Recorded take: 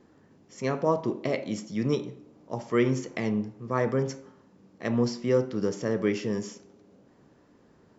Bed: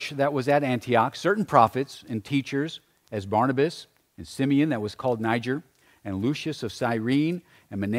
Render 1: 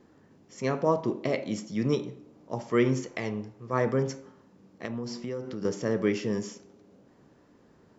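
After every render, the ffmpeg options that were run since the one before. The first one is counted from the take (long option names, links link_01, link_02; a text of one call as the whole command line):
ffmpeg -i in.wav -filter_complex "[0:a]asettb=1/sr,asplit=3[link_01][link_02][link_03];[link_01]atrim=end=3.064[link_04];[link_02]atrim=start=3.06:end=3.73,asetpts=PTS-STARTPTS,afade=type=in:duration=0.004:curve=qsin,afade=type=out:start_time=0.666:duration=0.004:curve=qsin,equalizer=frequency=210:width_type=o:width=1.4:gain=-7.5[link_05];[link_03]atrim=start=3.726[link_06];[link_04][link_05]acrossfade=duration=0.004:curve1=hsin:curve2=qsin[link_07];[link_07][link_06]acrossfade=duration=0.004:curve1=qsin:curve2=hsin,asettb=1/sr,asplit=3[link_08][link_09][link_10];[link_08]atrim=end=4.854[link_11];[link_09]atrim=start=4.85:end=5.65,asetpts=PTS-STARTPTS,afade=type=in:duration=0.004:curve=qsin,afade=type=out:start_time=0.796:duration=0.004:curve=qsin,acompressor=threshold=-31dB:ratio=6:attack=3.2:release=140:knee=1:detection=peak[link_12];[link_10]atrim=start=5.646[link_13];[link_11][link_12]acrossfade=duration=0.004:curve1=hsin:curve2=qsin[link_14];[link_14][link_13]acrossfade=duration=0.004:curve1=qsin:curve2=hsin" out.wav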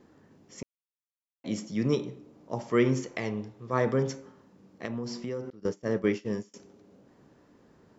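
ffmpeg -i in.wav -filter_complex "[0:a]asettb=1/sr,asplit=3[link_01][link_02][link_03];[link_01]atrim=end=3.374[link_04];[link_02]atrim=start=3.37:end=4.16,asetpts=PTS-STARTPTS,afade=type=in:duration=0.004:curve=qsin,afade=type=out:start_time=0.786:duration=0.004:curve=qsin,equalizer=frequency=3600:width_type=o:width=0.31:gain=6[link_05];[link_03]atrim=start=4.156[link_06];[link_04][link_05]acrossfade=duration=0.004:curve1=hsin:curve2=qsin[link_07];[link_07][link_06]acrossfade=duration=0.004:curve1=qsin:curve2=hsin,asettb=1/sr,asplit=3[link_08][link_09][link_10];[link_08]atrim=end=5.504[link_11];[link_09]atrim=start=5.5:end=6.54,asetpts=PTS-STARTPTS,afade=type=in:duration=0.004:curve=qsin,afade=type=out:start_time=1.036:duration=0.004:curve=qsin,agate=range=-33dB:threshold=-26dB:ratio=3:release=100:detection=peak[link_12];[link_10]atrim=start=6.536[link_13];[link_11][link_12]acrossfade=duration=0.004:curve1=hsin:curve2=qsin[link_14];[link_14][link_13]acrossfade=duration=0.004:curve1=qsin:curve2=hsin,asplit=3[link_15][link_16][link_17];[link_15]atrim=end=0.63,asetpts=PTS-STARTPTS,afade=type=out:start_time=0.626:duration=0.004:curve=hsin[link_18];[link_16]atrim=start=0.63:end=1.44,asetpts=PTS-STARTPTS,volume=0[link_19];[link_17]atrim=start=1.44,asetpts=PTS-STARTPTS,afade=type=in:duration=0.004:curve=hsin[link_20];[link_18][link_19][link_20]concat=n=3:v=0:a=1" out.wav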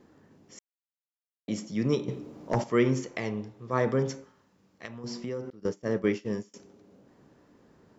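ffmpeg -i in.wav -filter_complex "[0:a]asettb=1/sr,asplit=3[link_01][link_02][link_03];[link_01]atrim=end=2.084[link_04];[link_02]atrim=start=2.08:end=2.64,asetpts=PTS-STARTPTS,afade=type=in:duration=0.004:curve=qsin,afade=type=out:start_time=0.556:duration=0.004:curve=qsin,aeval=exprs='0.141*sin(PI/2*1.78*val(0)/0.141)':channel_layout=same[link_05];[link_03]atrim=start=2.636[link_06];[link_04][link_05]acrossfade=duration=0.004:curve1=hsin:curve2=qsin[link_07];[link_07][link_06]acrossfade=duration=0.004:curve1=qsin:curve2=hsin,asettb=1/sr,asplit=3[link_08][link_09][link_10];[link_08]atrim=end=4.244[link_11];[link_09]atrim=start=4.24:end=5.04,asetpts=PTS-STARTPTS,afade=type=in:duration=0.004:curve=qsin,afade=type=out:start_time=0.796:duration=0.004:curve=qsin,equalizer=frequency=280:width=0.37:gain=-10[link_12];[link_10]atrim=start=5.036[link_13];[link_11][link_12]acrossfade=duration=0.004:curve1=hsin:curve2=qsin[link_14];[link_14][link_13]acrossfade=duration=0.004:curve1=qsin:curve2=hsin,asplit=3[link_15][link_16][link_17];[link_15]atrim=end=0.59,asetpts=PTS-STARTPTS,afade=type=out:start_time=0.586:duration=0.004:curve=hsin[link_18];[link_16]atrim=start=0.59:end=1.48,asetpts=PTS-STARTPTS,volume=0[link_19];[link_17]atrim=start=1.48,asetpts=PTS-STARTPTS,afade=type=in:duration=0.004:curve=hsin[link_20];[link_18][link_19][link_20]concat=n=3:v=0:a=1" out.wav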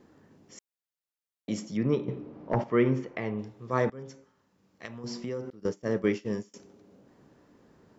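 ffmpeg -i in.wav -filter_complex "[0:a]asettb=1/sr,asplit=3[link_01][link_02][link_03];[link_01]atrim=end=1.774[link_04];[link_02]atrim=start=1.77:end=3.39,asetpts=PTS-STARTPTS,afade=type=in:duration=0.004:curve=qsin,afade=type=out:start_time=1.616:duration=0.004:curve=qsin,lowpass=2400[link_05];[link_03]atrim=start=3.386[link_06];[link_04][link_05]acrossfade=duration=0.004:curve1=hsin:curve2=qsin[link_07];[link_07][link_06]acrossfade=duration=0.004:curve1=qsin:curve2=hsin,asplit=2[link_08][link_09];[link_08]atrim=end=3.9,asetpts=PTS-STARTPTS,afade=type=out:start_time=3.896:duration=0.004:curve=hsin:silence=0.0707946[link_10];[link_09]atrim=start=3.9,asetpts=PTS-STARTPTS,afade=type=in:duration=0.98:silence=0.0707946[link_11];[link_10][link_11]concat=n=2:v=0:a=1" out.wav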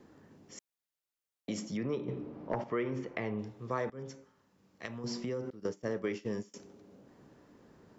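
ffmpeg -i in.wav -filter_complex "[0:a]acrossover=split=350[link_01][link_02];[link_01]alimiter=level_in=5.5dB:limit=-24dB:level=0:latency=1,volume=-5.5dB[link_03];[link_03][link_02]amix=inputs=2:normalize=0,acompressor=threshold=-32dB:ratio=3" out.wav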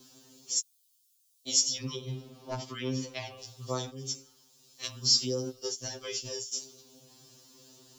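ffmpeg -i in.wav -af "aexciter=amount=15.3:drive=2.9:freq=3000,afftfilt=real='re*2.45*eq(mod(b,6),0)':imag='im*2.45*eq(mod(b,6),0)':win_size=2048:overlap=0.75" out.wav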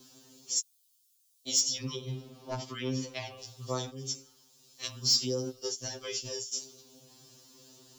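ffmpeg -i in.wav -af "asoftclip=type=tanh:threshold=-16dB" out.wav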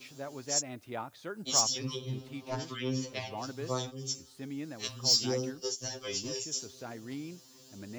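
ffmpeg -i in.wav -i bed.wav -filter_complex "[1:a]volume=-18dB[link_01];[0:a][link_01]amix=inputs=2:normalize=0" out.wav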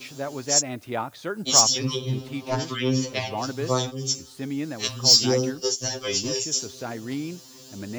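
ffmpeg -i in.wav -af "volume=10dB" out.wav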